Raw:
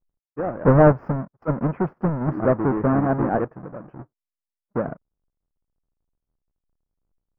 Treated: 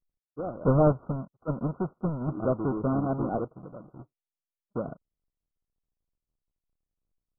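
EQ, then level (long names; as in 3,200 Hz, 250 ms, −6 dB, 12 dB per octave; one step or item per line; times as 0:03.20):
linear-phase brick-wall low-pass 1,500 Hz
high-frequency loss of the air 360 metres
notch filter 870 Hz, Q 12
−6.5 dB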